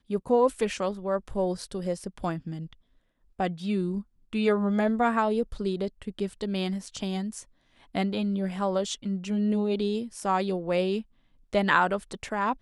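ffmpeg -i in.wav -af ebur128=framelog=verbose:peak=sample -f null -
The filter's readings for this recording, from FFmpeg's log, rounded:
Integrated loudness:
  I:         -28.4 LUFS
  Threshold: -38.6 LUFS
Loudness range:
  LRA:         4.5 LU
  Threshold: -49.2 LUFS
  LRA low:   -32.0 LUFS
  LRA high:  -27.5 LUFS
Sample peak:
  Peak:       -6.8 dBFS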